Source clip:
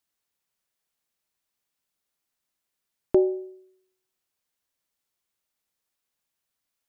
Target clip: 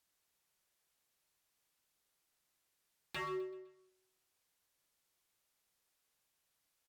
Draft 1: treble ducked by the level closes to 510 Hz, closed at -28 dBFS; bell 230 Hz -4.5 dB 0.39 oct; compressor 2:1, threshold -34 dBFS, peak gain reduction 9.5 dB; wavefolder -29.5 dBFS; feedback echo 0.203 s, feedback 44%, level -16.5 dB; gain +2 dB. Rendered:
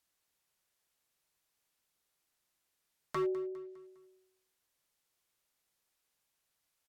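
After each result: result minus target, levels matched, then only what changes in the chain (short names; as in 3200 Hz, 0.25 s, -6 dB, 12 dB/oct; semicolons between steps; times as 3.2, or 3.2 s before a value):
echo 76 ms late; wavefolder: distortion -14 dB
change: feedback echo 0.127 s, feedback 44%, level -16.5 dB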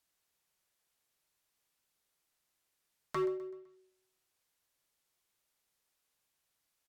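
wavefolder: distortion -14 dB
change: wavefolder -37.5 dBFS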